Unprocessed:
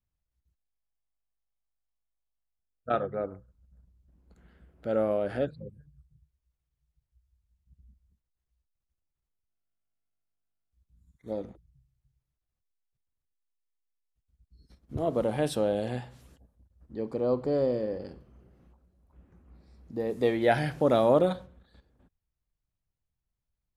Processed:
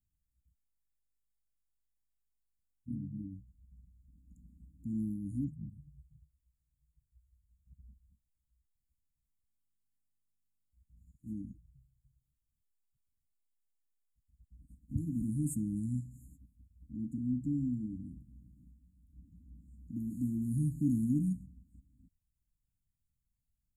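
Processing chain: brick-wall FIR band-stop 310–6600 Hz; trim +1 dB

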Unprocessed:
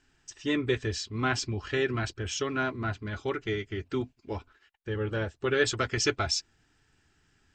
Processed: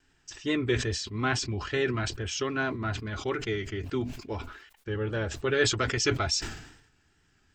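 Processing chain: vibrato 2.4 Hz 49 cents; decay stretcher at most 71 dB/s

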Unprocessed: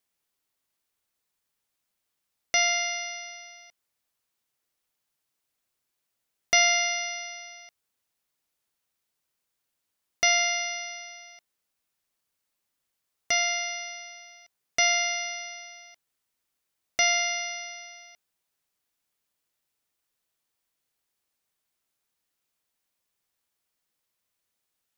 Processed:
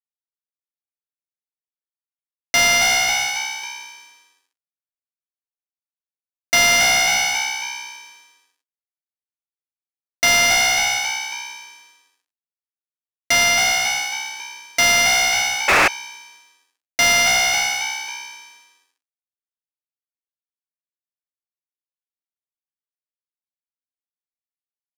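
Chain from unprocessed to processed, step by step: crossover distortion -38 dBFS; on a send: frequency-shifting echo 273 ms, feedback 43%, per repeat +64 Hz, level -11.5 dB; on the sum: painted sound noise, 15.68–15.88 s, 300–2700 Hz -22 dBFS; overdrive pedal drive 30 dB, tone 5.7 kHz, clips at -7.5 dBFS

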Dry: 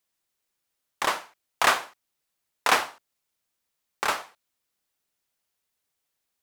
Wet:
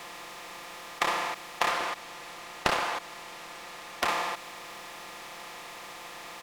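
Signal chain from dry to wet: spectral levelling over time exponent 0.4; treble shelf 5.2 kHz -8 dB; band-stop 1.5 kHz, Q 5.7; comb 5.8 ms, depth 83%; compression 8:1, threshold -24 dBFS, peak gain reduction 12 dB; 1.69–4.05 s: loudspeaker Doppler distortion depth 0.98 ms

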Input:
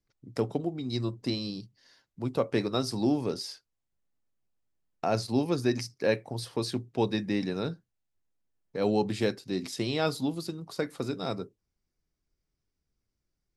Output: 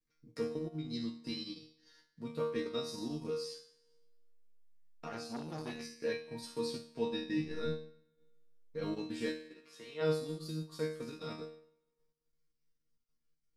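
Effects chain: 7.35–8.85 s: octave divider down 1 oct, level -4 dB; peaking EQ 750 Hz -12 dB 0.38 oct; in parallel at 0 dB: compression, threshold -39 dBFS, peak gain reduction 16.5 dB; 9.36–10.01 s: on the sum: three-band isolator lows -16 dB, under 500 Hz, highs -13 dB, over 2.2 kHz; chord resonator D#3 fifth, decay 0.72 s; spring tank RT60 1.3 s, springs 49 ms, chirp 20 ms, DRR 18.5 dB; transient shaper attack -1 dB, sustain -8 dB; 5.07–5.85 s: transformer saturation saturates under 890 Hz; trim +10 dB

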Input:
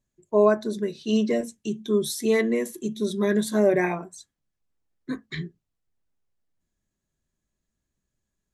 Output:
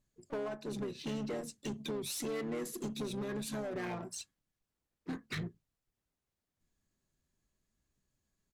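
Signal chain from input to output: dynamic bell 230 Hz, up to -4 dB, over -39 dBFS, Q 6.1; compression 16:1, threshold -32 dBFS, peak gain reduction 19.5 dB; saturation -36 dBFS, distortion -10 dB; Chebyshev shaper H 4 -26 dB, 6 -27 dB, 7 -28 dB, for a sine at -36 dBFS; harmony voices -7 st -8 dB, +4 st -16 dB; trim +1.5 dB

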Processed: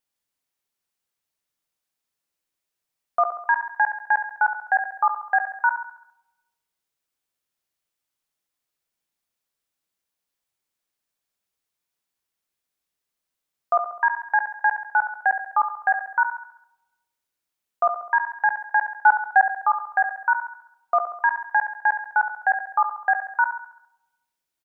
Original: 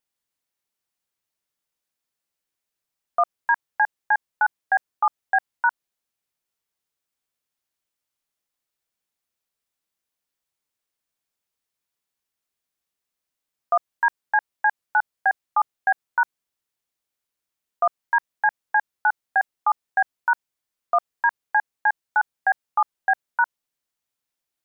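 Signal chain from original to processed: 18.94–19.54 s: dynamic bell 950 Hz, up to +7 dB, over -32 dBFS, Q 1; feedback delay 68 ms, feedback 52%, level -9.5 dB; on a send at -20 dB: reverberation RT60 1.1 s, pre-delay 6 ms

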